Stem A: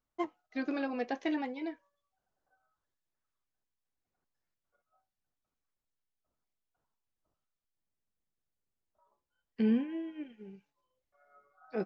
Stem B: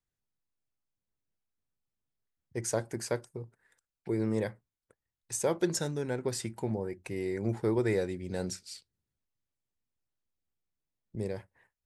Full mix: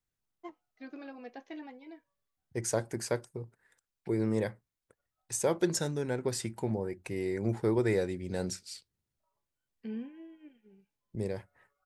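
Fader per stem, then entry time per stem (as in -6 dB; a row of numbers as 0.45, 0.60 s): -11.0, +0.5 dB; 0.25, 0.00 s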